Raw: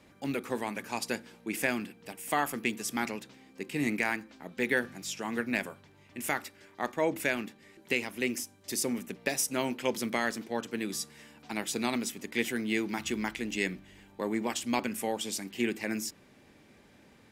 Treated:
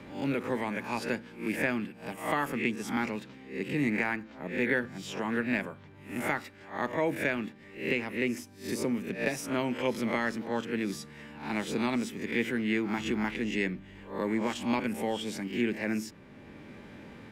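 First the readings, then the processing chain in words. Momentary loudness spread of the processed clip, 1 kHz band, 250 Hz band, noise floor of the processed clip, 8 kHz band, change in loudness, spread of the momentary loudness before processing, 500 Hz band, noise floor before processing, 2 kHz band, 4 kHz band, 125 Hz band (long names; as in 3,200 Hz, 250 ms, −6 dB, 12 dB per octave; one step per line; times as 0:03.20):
12 LU, +0.5 dB, +3.0 dB, −51 dBFS, −9.5 dB, +1.0 dB, 9 LU, +1.5 dB, −59 dBFS, +0.5 dB, −3.0 dB, +4.5 dB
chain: peak hold with a rise ahead of every peak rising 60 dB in 0.37 s
bass and treble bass +4 dB, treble −13 dB
notch filter 720 Hz, Q 12
multiband upward and downward compressor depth 40%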